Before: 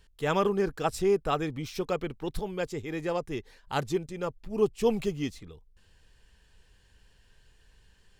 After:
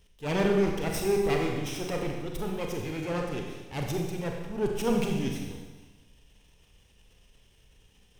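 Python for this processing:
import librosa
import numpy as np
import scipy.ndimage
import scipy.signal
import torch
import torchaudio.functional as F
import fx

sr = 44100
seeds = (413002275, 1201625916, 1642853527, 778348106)

y = fx.lower_of_two(x, sr, delay_ms=0.34)
y = fx.transient(y, sr, attack_db=-8, sustain_db=5)
y = fx.rev_schroeder(y, sr, rt60_s=1.3, comb_ms=31, drr_db=1.0)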